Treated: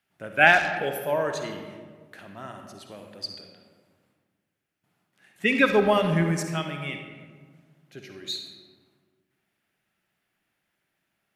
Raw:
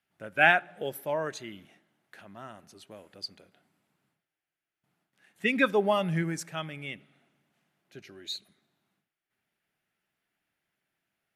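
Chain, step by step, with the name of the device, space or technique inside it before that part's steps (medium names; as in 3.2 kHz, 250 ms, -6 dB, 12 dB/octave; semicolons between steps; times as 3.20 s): saturated reverb return (on a send at -4 dB: reverberation RT60 1.6 s, pre-delay 46 ms + saturation -22 dBFS, distortion -13 dB); on the sum: trim +4 dB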